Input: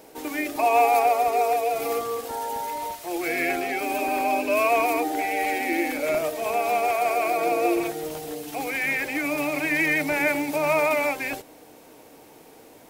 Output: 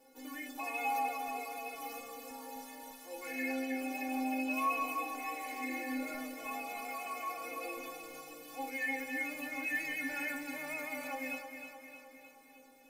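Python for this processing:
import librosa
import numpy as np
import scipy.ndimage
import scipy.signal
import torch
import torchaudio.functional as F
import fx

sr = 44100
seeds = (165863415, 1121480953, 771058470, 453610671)

y = fx.stiff_resonator(x, sr, f0_hz=260.0, decay_s=0.29, stiffness=0.008)
y = fx.echo_feedback(y, sr, ms=309, feedback_pct=56, wet_db=-8.0)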